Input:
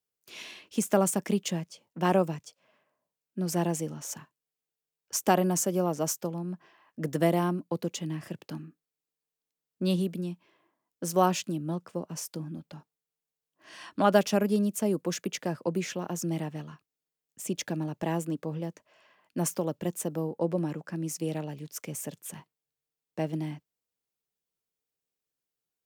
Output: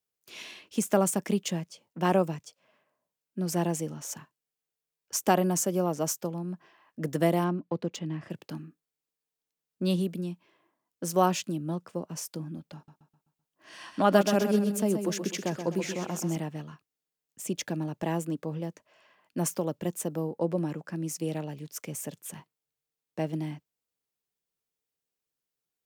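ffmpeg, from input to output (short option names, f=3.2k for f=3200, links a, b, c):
-filter_complex "[0:a]asettb=1/sr,asplit=3[a][b][c];[a]atrim=end=7.444[d];[b]atrim=start=7.44:end=8.3,asetpts=PTS-STARTPTS,afade=t=in:d=0.004:c=qsin,afade=t=out:st=0.856:d=0.004:c=qsin,adynamicsmooth=sensitivity=5:basefreq=3.5k[e];[c]atrim=start=8.296[f];[d][e]acrossfade=d=0.004:c1=hsin:c2=qsin[g];[g][f]acrossfade=d=0.004:c1=qsin:c2=hsin,asettb=1/sr,asplit=3[h][i][j];[h]atrim=end=12.754[k];[i]atrim=start=12.75:end=16.37,asetpts=PTS-STARTPTS,afade=t=in:d=0.004:c=qsin,afade=t=out:st=3.616:d=0.004:c=qsin,aecho=1:1:128|256|384|512|640:0.422|0.19|0.0854|0.0384|0.0173,atrim=end_sample=159642[l];[j]atrim=start=16.366[m];[k][l]acrossfade=d=0.004:c1=hsin:c2=qsin[n];[n][m]acrossfade=d=0.004:c1=qsin:c2=hsin"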